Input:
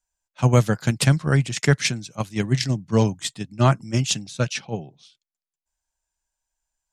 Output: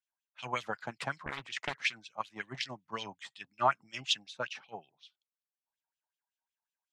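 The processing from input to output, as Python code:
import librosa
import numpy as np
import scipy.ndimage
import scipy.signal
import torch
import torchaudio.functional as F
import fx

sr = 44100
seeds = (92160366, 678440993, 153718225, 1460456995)

y = fx.filter_lfo_bandpass(x, sr, shape='sine', hz=5.4, low_hz=800.0, high_hz=3400.0, q=3.7)
y = fx.doppler_dist(y, sr, depth_ms=0.95, at=(1.26, 1.93))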